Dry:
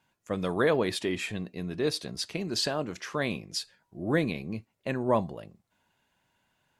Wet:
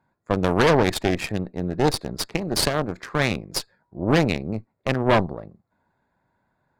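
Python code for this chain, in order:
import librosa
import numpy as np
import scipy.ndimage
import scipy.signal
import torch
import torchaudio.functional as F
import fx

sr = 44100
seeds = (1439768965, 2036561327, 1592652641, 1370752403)

y = fx.wiener(x, sr, points=15)
y = fx.cheby_harmonics(y, sr, harmonics=(6,), levels_db=(-11,), full_scale_db=-12.0)
y = y * librosa.db_to_amplitude(5.5)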